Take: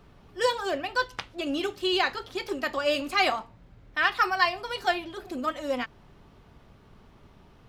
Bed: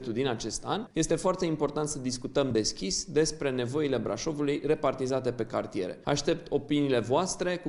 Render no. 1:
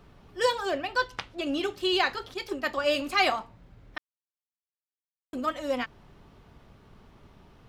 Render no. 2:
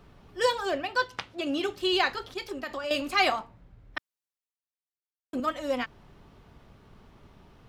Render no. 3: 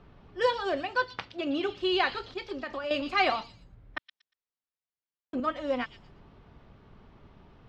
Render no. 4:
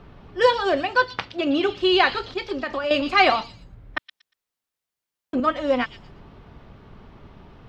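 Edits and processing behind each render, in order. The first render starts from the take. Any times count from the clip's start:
0.65–1.77 high shelf 9000 Hz -5 dB; 2.34–2.84 three-band expander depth 100%; 3.98–5.33 mute
0.83–1.69 HPF 84 Hz; 2.38–2.91 compressor, threshold -30 dBFS; 3.41–5.4 three-band expander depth 40%
air absorption 170 m; delay with a stepping band-pass 0.118 s, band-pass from 4300 Hz, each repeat 0.7 oct, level -6.5 dB
gain +8.5 dB

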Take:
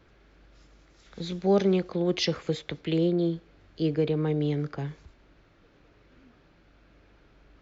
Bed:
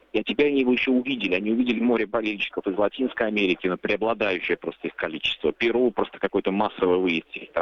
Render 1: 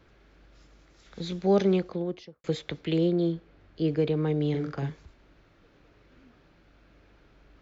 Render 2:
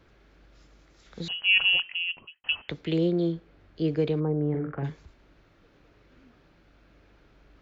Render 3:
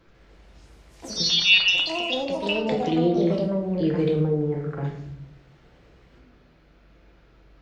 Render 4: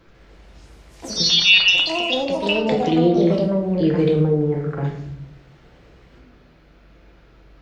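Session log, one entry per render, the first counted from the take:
1.72–2.44 studio fade out; 3.32–3.88 high shelf 5400 Hz -11 dB; 4.5–4.9 doubler 44 ms -5 dB
1.28–2.69 inverted band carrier 3100 Hz; 4.19–4.83 LPF 1100 Hz -> 2300 Hz 24 dB/oct
echoes that change speed 0.145 s, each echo +4 st, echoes 3; shoebox room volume 160 m³, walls mixed, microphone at 0.74 m
gain +5 dB; limiter -3 dBFS, peak gain reduction 2.5 dB

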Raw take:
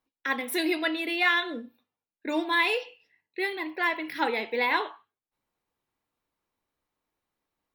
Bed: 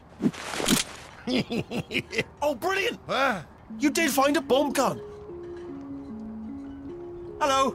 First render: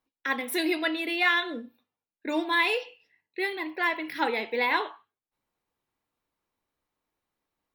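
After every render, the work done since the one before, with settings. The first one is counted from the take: nothing audible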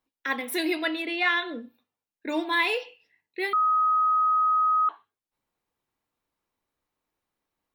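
1.02–1.62 air absorption 64 m; 3.53–4.89 bleep 1260 Hz -19 dBFS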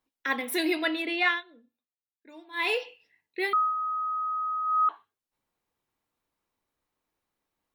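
1.27–2.69 dip -20.5 dB, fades 0.16 s; 3.55–4.83 dip -8 dB, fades 0.19 s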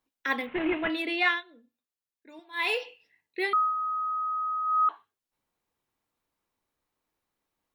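0.46–0.9 CVSD 16 kbps; 2.39–2.8 bell 230 Hz -12.5 dB 0.88 oct; 3.43–4.11 LPF 9800 Hz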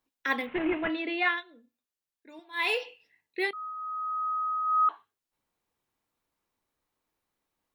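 0.58–1.38 air absorption 220 m; 3.51–4.28 fade in, from -21 dB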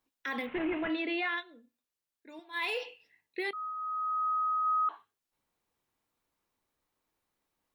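limiter -25 dBFS, peak gain reduction 10.5 dB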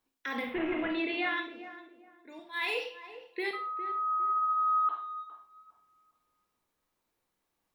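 tape echo 0.407 s, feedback 32%, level -10 dB, low-pass 1200 Hz; Schroeder reverb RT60 0.37 s, combs from 33 ms, DRR 5 dB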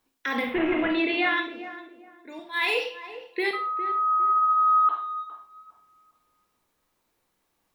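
gain +7.5 dB

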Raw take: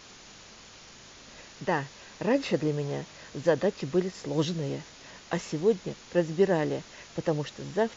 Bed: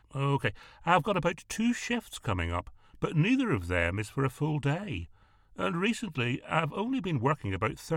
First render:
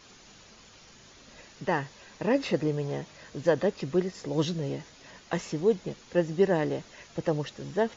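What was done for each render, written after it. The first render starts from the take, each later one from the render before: denoiser 6 dB, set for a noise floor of -50 dBFS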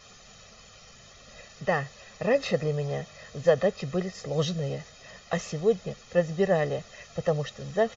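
comb 1.6 ms, depth 78%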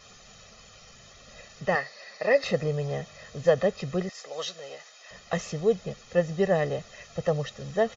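1.75–2.44 speaker cabinet 340–6200 Hz, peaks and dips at 600 Hz +4 dB, 2000 Hz +8 dB, 3200 Hz -5 dB, 4500 Hz +9 dB; 4.09–5.11 HPF 720 Hz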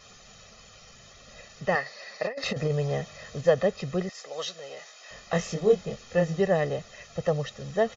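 1.86–3.41 negative-ratio compressor -26 dBFS, ratio -0.5; 4.74–6.41 doubler 24 ms -2.5 dB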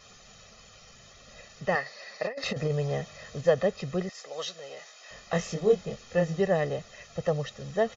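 gain -1.5 dB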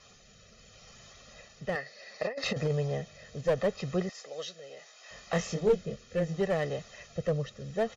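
one-sided clip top -21.5 dBFS; rotary speaker horn 0.7 Hz

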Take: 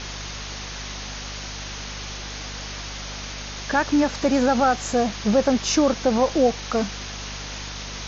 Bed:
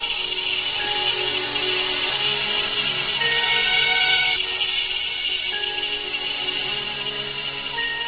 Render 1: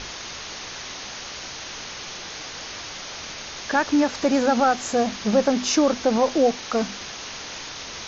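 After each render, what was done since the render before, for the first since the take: notches 50/100/150/200/250 Hz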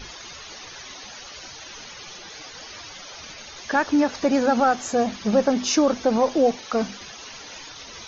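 denoiser 13 dB, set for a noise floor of -36 dBFS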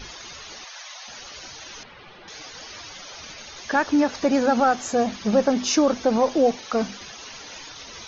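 0.64–1.08 steep high-pass 570 Hz 48 dB/oct; 1.83–2.28 air absorption 370 m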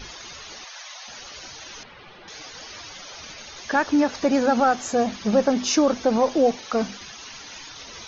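6.97–7.74 bell 520 Hz -5.5 dB 0.94 oct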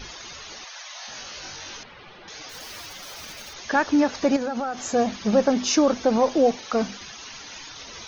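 0.92–1.77 flutter echo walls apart 3.7 m, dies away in 0.28 s; 2.49–3.55 block floating point 3-bit; 4.36–4.91 compressor, threshold -24 dBFS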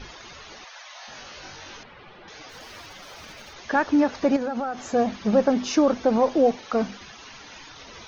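LPF 2500 Hz 6 dB/oct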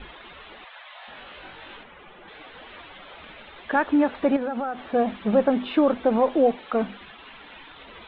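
steep low-pass 3700 Hz 72 dB/oct; bell 110 Hz -13.5 dB 0.51 oct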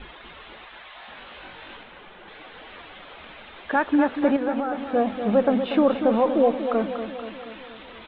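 feedback echo 0.239 s, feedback 59%, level -9 dB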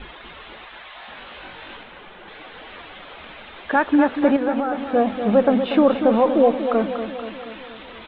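gain +3.5 dB

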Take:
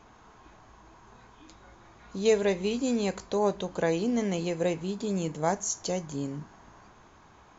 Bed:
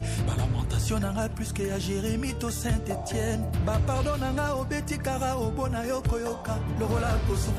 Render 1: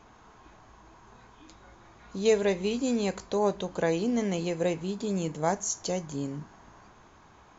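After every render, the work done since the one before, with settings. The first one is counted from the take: nothing audible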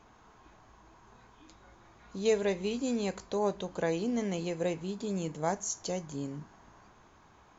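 gain -4 dB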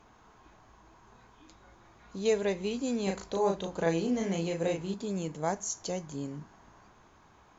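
3.03–4.94 doubler 36 ms -2.5 dB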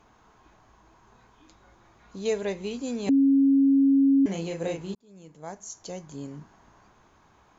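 3.09–4.26 bleep 274 Hz -16 dBFS; 4.95–6.32 fade in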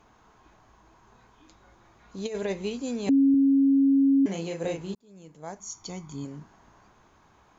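2.18–2.7 negative-ratio compressor -28 dBFS, ratio -0.5; 3.34–4.65 HPF 120 Hz 6 dB/oct; 5.59–6.25 comb 0.9 ms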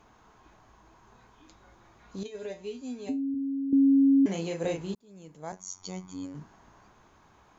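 2.23–3.73 resonator 84 Hz, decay 0.22 s, harmonics odd, mix 90%; 5.52–6.35 robotiser 92.5 Hz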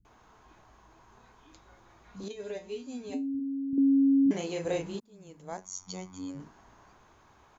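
bands offset in time lows, highs 50 ms, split 190 Hz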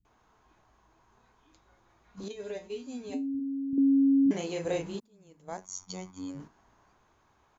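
gate -46 dBFS, range -7 dB

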